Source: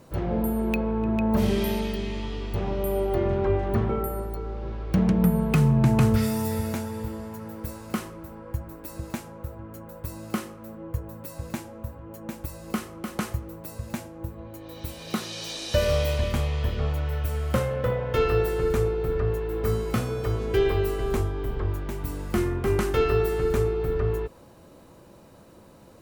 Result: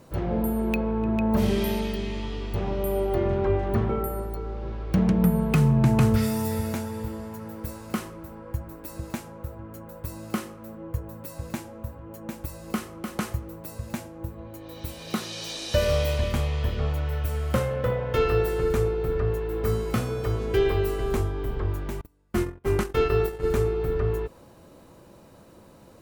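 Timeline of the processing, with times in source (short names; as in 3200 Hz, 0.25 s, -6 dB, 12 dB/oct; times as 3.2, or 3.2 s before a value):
22.01–23.46 gate -25 dBFS, range -33 dB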